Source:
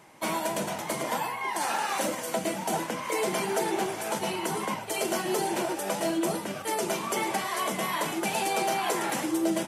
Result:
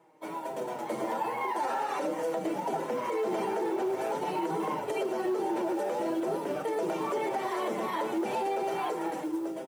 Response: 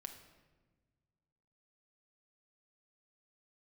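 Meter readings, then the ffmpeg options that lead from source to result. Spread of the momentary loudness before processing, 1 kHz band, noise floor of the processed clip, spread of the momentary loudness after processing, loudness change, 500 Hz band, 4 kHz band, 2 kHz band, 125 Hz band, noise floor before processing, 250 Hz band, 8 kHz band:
3 LU, -2.0 dB, -38 dBFS, 3 LU, -2.5 dB, 0.0 dB, -12.0 dB, -8.0 dB, -7.0 dB, -37 dBFS, -1.5 dB, -16.0 dB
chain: -filter_complex "[0:a]aecho=1:1:2.2:0.33,flanger=delay=6.1:depth=3.1:regen=12:speed=0.44:shape=triangular,tiltshelf=f=970:g=9,asoftclip=type=tanh:threshold=-19dB,dynaudnorm=f=110:g=17:m=13dB,highpass=280,highshelf=f=3.5k:g=-3,bandreject=f=50:t=h:w=6,bandreject=f=100:t=h:w=6,bandreject=f=150:t=h:w=6,bandreject=f=200:t=h:w=6,bandreject=f=250:t=h:w=6,bandreject=f=300:t=h:w=6,bandreject=f=350:t=h:w=6,bandreject=f=400:t=h:w=6,bandreject=f=450:t=h:w=6,asplit=2[a][b];[b]aecho=0:1:366:0.0794[c];[a][c]amix=inputs=2:normalize=0,acrusher=bits=7:mode=log:mix=0:aa=0.000001,acrossover=split=6400[d][e];[e]acompressor=threshold=-42dB:ratio=4:attack=1:release=60[f];[d][f]amix=inputs=2:normalize=0,alimiter=limit=-16.5dB:level=0:latency=1:release=156,volume=-6dB"

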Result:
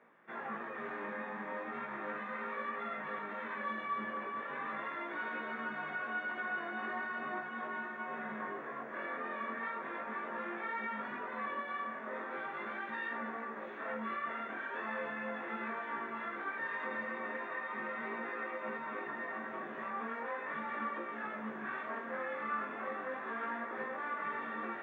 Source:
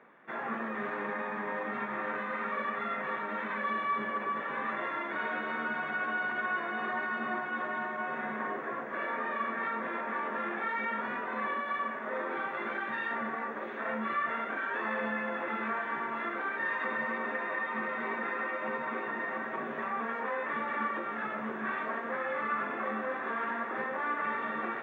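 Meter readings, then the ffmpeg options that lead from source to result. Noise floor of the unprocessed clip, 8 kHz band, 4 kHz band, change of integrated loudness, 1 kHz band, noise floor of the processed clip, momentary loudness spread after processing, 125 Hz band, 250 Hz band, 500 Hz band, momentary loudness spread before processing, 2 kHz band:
-38 dBFS, n/a, -6.0 dB, -6.0 dB, -6.0 dB, -44 dBFS, 3 LU, -6.0 dB, -5.5 dB, -5.5 dB, 3 LU, -6.0 dB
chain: -af "flanger=delay=17:depth=6.3:speed=0.38,volume=-3dB"

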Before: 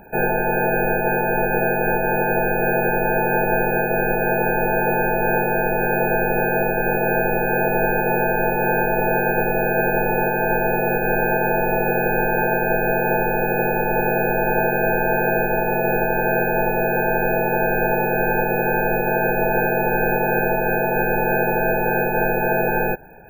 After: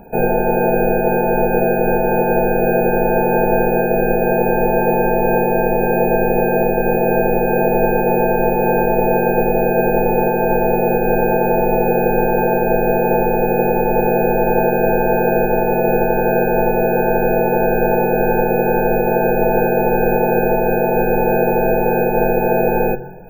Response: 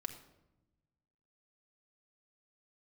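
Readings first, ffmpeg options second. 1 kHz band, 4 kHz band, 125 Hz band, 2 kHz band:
+3.5 dB, n/a, +4.0 dB, -4.0 dB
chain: -filter_complex "[0:a]asplit=2[a][b];[b]lowpass=f=1.7k:w=0.5412,lowpass=f=1.7k:w=1.3066[c];[1:a]atrim=start_sample=2205[d];[c][d]afir=irnorm=-1:irlink=0,volume=1.5dB[e];[a][e]amix=inputs=2:normalize=0"

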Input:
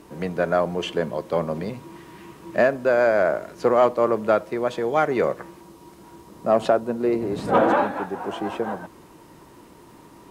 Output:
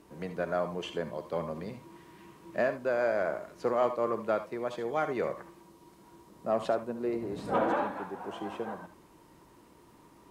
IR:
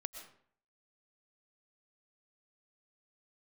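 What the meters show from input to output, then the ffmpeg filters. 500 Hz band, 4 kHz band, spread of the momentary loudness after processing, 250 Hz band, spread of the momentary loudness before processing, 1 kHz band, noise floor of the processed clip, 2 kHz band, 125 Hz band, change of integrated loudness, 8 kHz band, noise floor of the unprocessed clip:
-10.0 dB, -9.5 dB, 15 LU, -10.0 dB, 11 LU, -9.5 dB, -58 dBFS, -10.0 dB, -10.0 dB, -10.0 dB, n/a, -49 dBFS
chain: -filter_complex "[1:a]atrim=start_sample=2205,atrim=end_sample=6174,asetrate=74970,aresample=44100[a];[0:a][a]afir=irnorm=-1:irlink=0,volume=-2.5dB"

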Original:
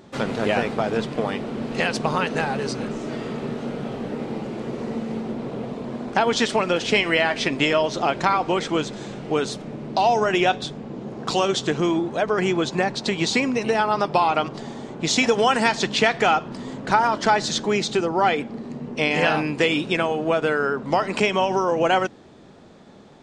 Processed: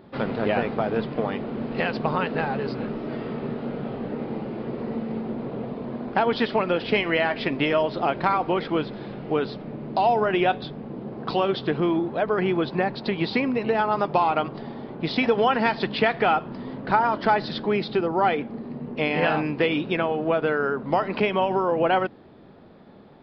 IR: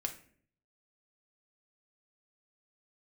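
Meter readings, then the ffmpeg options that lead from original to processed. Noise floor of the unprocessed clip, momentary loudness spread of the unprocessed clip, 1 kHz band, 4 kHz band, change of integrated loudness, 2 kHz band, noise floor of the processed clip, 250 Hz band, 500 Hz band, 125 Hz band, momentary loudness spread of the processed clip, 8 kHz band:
-47 dBFS, 11 LU, -2.0 dB, -7.0 dB, -2.5 dB, -4.0 dB, -48 dBFS, -1.0 dB, -1.5 dB, -1.0 dB, 10 LU, under -30 dB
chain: -af "aemphasis=mode=reproduction:type=75fm,aresample=11025,aresample=44100,volume=-2dB"

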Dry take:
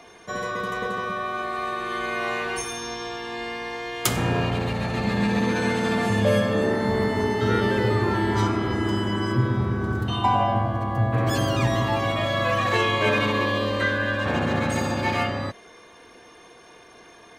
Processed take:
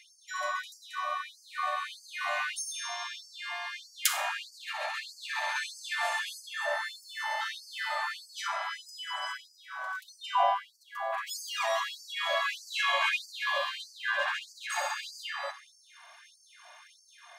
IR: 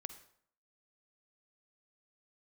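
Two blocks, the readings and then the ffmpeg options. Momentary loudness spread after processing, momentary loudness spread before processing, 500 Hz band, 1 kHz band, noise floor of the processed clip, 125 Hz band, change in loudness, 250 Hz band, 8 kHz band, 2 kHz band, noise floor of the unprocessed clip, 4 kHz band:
11 LU, 8 LU, -15.0 dB, -7.0 dB, -61 dBFS, under -40 dB, -9.0 dB, under -40 dB, -2.0 dB, -5.0 dB, -49 dBFS, -3.5 dB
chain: -filter_complex "[1:a]atrim=start_sample=2205,asetrate=57330,aresample=44100[a];[0:a][a]afir=irnorm=-1:irlink=0,afftfilt=real='re*gte(b*sr/1024,540*pow(4500/540,0.5+0.5*sin(2*PI*1.6*pts/sr)))':imag='im*gte(b*sr/1024,540*pow(4500/540,0.5+0.5*sin(2*PI*1.6*pts/sr)))':win_size=1024:overlap=0.75,volume=4dB"

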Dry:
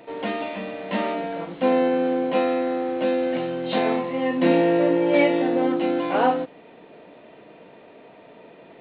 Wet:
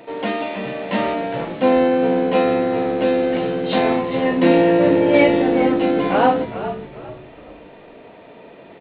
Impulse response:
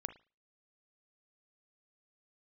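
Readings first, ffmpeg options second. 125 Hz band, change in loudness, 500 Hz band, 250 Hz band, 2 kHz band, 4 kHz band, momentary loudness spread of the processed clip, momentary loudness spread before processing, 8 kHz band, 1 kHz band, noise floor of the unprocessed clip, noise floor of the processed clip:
+7.0 dB, +4.5 dB, +5.0 dB, +5.0 dB, +5.0 dB, +5.0 dB, 12 LU, 10 LU, n/a, +4.5 dB, -48 dBFS, -43 dBFS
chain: -filter_complex "[0:a]asplit=5[a][b][c][d][e];[b]adelay=411,afreqshift=-72,volume=-11dB[f];[c]adelay=822,afreqshift=-144,volume=-20.4dB[g];[d]adelay=1233,afreqshift=-216,volume=-29.7dB[h];[e]adelay=1644,afreqshift=-288,volume=-39.1dB[i];[a][f][g][h][i]amix=inputs=5:normalize=0,volume=4.5dB"

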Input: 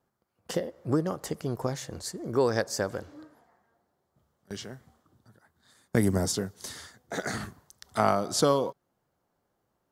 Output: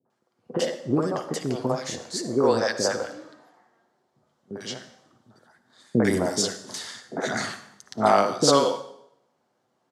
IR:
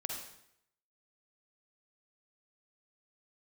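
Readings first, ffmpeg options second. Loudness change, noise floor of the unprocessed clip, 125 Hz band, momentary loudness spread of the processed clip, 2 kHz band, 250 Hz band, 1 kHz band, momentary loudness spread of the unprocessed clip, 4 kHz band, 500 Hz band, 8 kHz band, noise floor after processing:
+4.5 dB, -78 dBFS, 0.0 dB, 17 LU, +5.5 dB, +4.5 dB, +6.5 dB, 16 LU, +7.5 dB, +5.0 dB, +5.0 dB, -73 dBFS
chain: -filter_complex "[0:a]highpass=210,lowpass=7k,acrossover=split=430|1400[a][b][c];[b]adelay=50[d];[c]adelay=100[e];[a][d][e]amix=inputs=3:normalize=0,asplit=2[f][g];[1:a]atrim=start_sample=2205,adelay=8[h];[g][h]afir=irnorm=-1:irlink=0,volume=-9dB[i];[f][i]amix=inputs=2:normalize=0,volume=7.5dB"

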